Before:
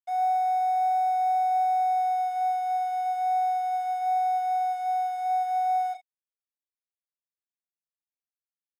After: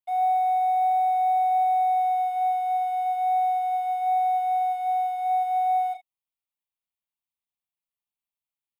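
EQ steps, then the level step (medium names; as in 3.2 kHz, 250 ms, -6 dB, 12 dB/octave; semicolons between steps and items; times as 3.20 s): static phaser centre 1.6 kHz, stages 6; +3.5 dB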